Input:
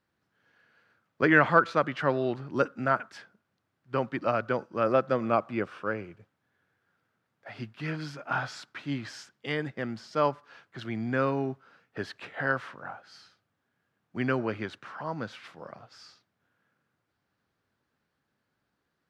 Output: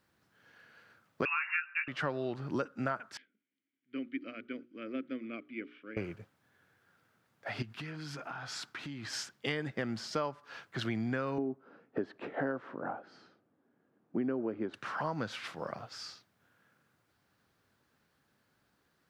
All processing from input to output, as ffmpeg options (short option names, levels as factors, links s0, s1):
-filter_complex "[0:a]asettb=1/sr,asplit=3[s0][s1][s2];[s0]atrim=end=1.254[s3];[s1]atrim=start=1.25:end=1.88,asetpts=PTS-STARTPTS,afade=t=in:d=0.004:c=qsin,afade=t=out:st=0.626:d=0.004:c=qsin,lowpass=f=2500:t=q:w=0.5098,lowpass=f=2500:t=q:w=0.6013,lowpass=f=2500:t=q:w=0.9,lowpass=f=2500:t=q:w=2.563,afreqshift=-2900,highpass=f=1200:w=0.5412,highpass=f=1200:w=1.3066,asplit=2[s4][s5];[s5]adelay=18,volume=0.501[s6];[s4][s6]amix=inputs=2:normalize=0,atrim=end_sample=27783[s7];[s2]atrim=start=1.876[s8];[s3][s7]acrossfade=d=0.004:c1=hsin:c2=qsin[s9];[s9][s8]acrossfade=d=0.004:c1=qsin:c2=hsin,asettb=1/sr,asplit=3[s10][s11][s12];[s10]atrim=end=3.174[s13];[s11]atrim=start=3.17:end=5.97,asetpts=PTS-STARTPTS,afade=t=in:d=0.004:c=qsin,afade=t=out:st=2.796:d=0.004:c=qsin,asplit=3[s14][s15][s16];[s14]bandpass=f=270:t=q:w=8,volume=1[s17];[s15]bandpass=f=2290:t=q:w=8,volume=0.501[s18];[s16]bandpass=f=3010:t=q:w=8,volume=0.355[s19];[s17][s18][s19]amix=inputs=3:normalize=0,bass=f=250:g=-10,treble=f=4000:g=-9,bandreject=f=60:t=h:w=6,bandreject=f=120:t=h:w=6,bandreject=f=180:t=h:w=6,bandreject=f=240:t=h:w=6,bandreject=f=300:t=h:w=6,bandreject=f=360:t=h:w=6,bandreject=f=420:t=h:w=6[s20];[s12]atrim=start=5.966[s21];[s13][s20]acrossfade=d=0.004:c1=hsin:c2=qsin[s22];[s22][s21]acrossfade=d=0.004:c1=qsin:c2=hsin,asettb=1/sr,asplit=3[s23][s24][s25];[s23]atrim=end=7.624[s26];[s24]atrim=start=7.62:end=9.13,asetpts=PTS-STARTPTS,afade=t=in:d=0.004:c=qsin,afade=t=out:st=1.506:d=0.004:c=qsin,bandreject=f=580:w=7.6,acompressor=threshold=0.00708:ratio=16:attack=3.2:release=140:knee=1:detection=peak[s27];[s25]atrim=start=9.126[s28];[s26][s27]acrossfade=d=0.004:c1=hsin:c2=qsin[s29];[s29][s28]acrossfade=d=0.004:c1=qsin:c2=hsin,asettb=1/sr,asplit=3[s30][s31][s32];[s30]atrim=end=11.384[s33];[s31]atrim=start=11.38:end=14.74,asetpts=PTS-STARTPTS,afade=t=in:d=0.004:c=qsin,afade=t=out:st=3.356:d=0.004:c=qsin,bandpass=f=430:t=q:w=0.7,equalizer=f=280:t=o:w=1.4:g=9[s34];[s32]atrim=start=14.736[s35];[s33][s34]acrossfade=d=0.004:c1=hsin:c2=qsin[s36];[s36][s35]acrossfade=d=0.004:c1=qsin:c2=hsin,highshelf=f=5000:g=5,acompressor=threshold=0.0178:ratio=10,volume=1.68"